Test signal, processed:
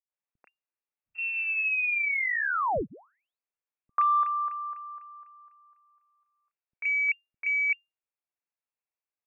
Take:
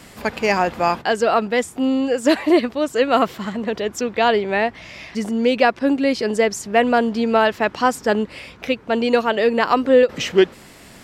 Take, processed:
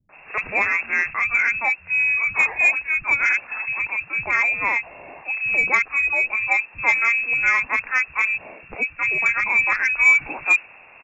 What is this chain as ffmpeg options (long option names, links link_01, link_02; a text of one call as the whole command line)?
ffmpeg -i in.wav -filter_complex "[0:a]acrossover=split=220[link_01][link_02];[link_01]asoftclip=type=hard:threshold=-29.5dB[link_03];[link_03][link_02]amix=inputs=2:normalize=0,lowpass=frequency=2400:width_type=q:width=0.5098,lowpass=frequency=2400:width_type=q:width=0.6013,lowpass=frequency=2400:width_type=q:width=0.9,lowpass=frequency=2400:width_type=q:width=2.563,afreqshift=-2800,asoftclip=type=tanh:threshold=-4dB,acrossover=split=190|1700[link_04][link_05][link_06];[link_05]adelay=90[link_07];[link_06]adelay=120[link_08];[link_04][link_07][link_08]amix=inputs=3:normalize=0" out.wav